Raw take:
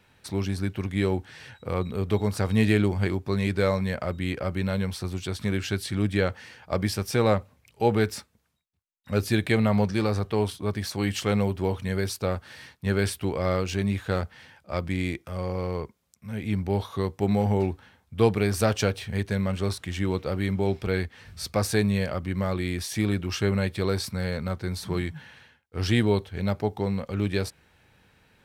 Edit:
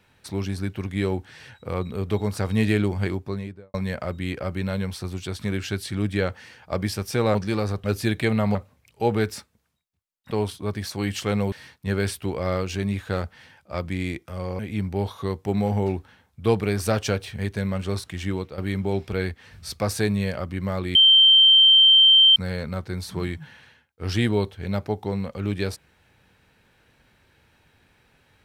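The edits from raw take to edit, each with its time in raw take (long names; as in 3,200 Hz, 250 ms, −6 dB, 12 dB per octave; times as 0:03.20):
0:03.09–0:03.74: fade out and dull
0:07.35–0:09.11: swap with 0:09.82–0:10.31
0:11.52–0:12.51: remove
0:15.58–0:16.33: remove
0:20.04–0:20.32: fade out, to −11 dB
0:22.69–0:24.10: beep over 3,130 Hz −10.5 dBFS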